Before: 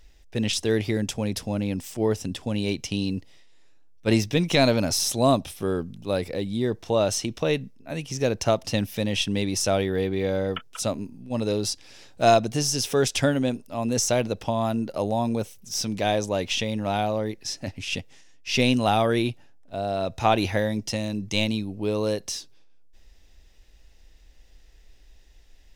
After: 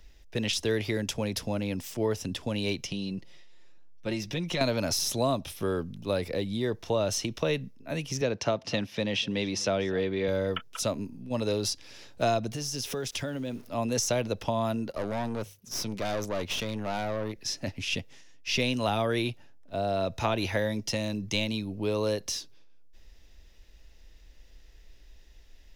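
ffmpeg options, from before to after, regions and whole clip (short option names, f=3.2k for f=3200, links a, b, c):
-filter_complex "[0:a]asettb=1/sr,asplit=3[a][b][c];[a]atrim=end=2.844[d];[b]atrim=start=2.84:end=4.61,asetpts=PTS-STARTPTS,afade=t=in:d=0.004:c=qsin,afade=t=out:st=1.766:d=0.004:c=qsin,highshelf=f=11k:g=-7.5,aecho=1:1:5.6:0.51,atrim=end_sample=78057,acompressor=threshold=-33dB:ratio=2:attack=3.2:release=140:knee=1:detection=peak[e];[c]atrim=start=4.606[f];[d][e]acrossfade=d=0.004:c1=hsin:c2=qsin[g];[g][f]acrossfade=d=0.004:c1=qsin:c2=hsin,asettb=1/sr,asplit=3[h][i][j];[h]atrim=end=8.214[k];[i]atrim=start=8.21:end=10.28,asetpts=PTS-STARTPTS,afade=t=in:d=0.004:c=qsin,afade=t=out:st=2.066:d=0.004:c=qsin,highpass=130,lowpass=5.1k,aecho=1:1:245:0.0708,atrim=end_sample=91287[l];[j]atrim=start=10.276[m];[k][l]acrossfade=d=0.004:c1=hsin:c2=qsin[n];[n][m]acrossfade=d=0.004:c1=qsin:c2=hsin,asettb=1/sr,asplit=3[o][p][q];[o]atrim=end=12.524[r];[p]atrim=start=12.52:end=13.69,asetpts=PTS-STARTPTS,afade=t=in:d=0.004:c=qsin,afade=t=out:st=1.166:d=0.004:c=qsin,acompressor=threshold=-29dB:ratio=6:attack=3.2:release=140:knee=1:detection=peak,aeval=exprs='val(0)*gte(abs(val(0)),0.00316)':c=same[s];[q]atrim=start=13.686[t];[r][s]acrossfade=d=0.004:c1=hsin:c2=qsin[u];[u][t]acrossfade=d=0.004:c1=qsin:c2=hsin,asettb=1/sr,asplit=3[v][w][x];[v]atrim=end=14.904[y];[w]atrim=start=14.9:end=17.36,asetpts=PTS-STARTPTS,afade=t=in:d=0.004:c=qsin,afade=t=out:st=2.456:d=0.004:c=qsin,highpass=47,bandreject=f=50:t=h:w=6,bandreject=f=100:t=h:w=6,bandreject=f=150:t=h:w=6,aeval=exprs='(tanh(20*val(0)+0.7)-tanh(0.7))/20':c=same[z];[x]atrim=start=17.356[aa];[y][z]acrossfade=d=0.004:c1=hsin:c2=qsin[ab];[ab][aa]acrossfade=d=0.004:c1=qsin:c2=hsin,equalizer=f=8.3k:t=o:w=0.36:g=-6,bandreject=f=770:w=12,acrossover=split=200|400[ac][ad][ae];[ac]acompressor=threshold=-34dB:ratio=4[af];[ad]acompressor=threshold=-38dB:ratio=4[ag];[ae]acompressor=threshold=-26dB:ratio=4[ah];[af][ag][ah]amix=inputs=3:normalize=0"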